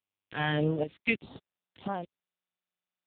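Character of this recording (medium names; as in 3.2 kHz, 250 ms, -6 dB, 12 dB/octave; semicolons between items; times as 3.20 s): a quantiser's noise floor 6-bit, dither none; phasing stages 2, 1.7 Hz, lowest notch 500–2200 Hz; chopped level 0.96 Hz, depth 65%, duty 80%; AMR-NB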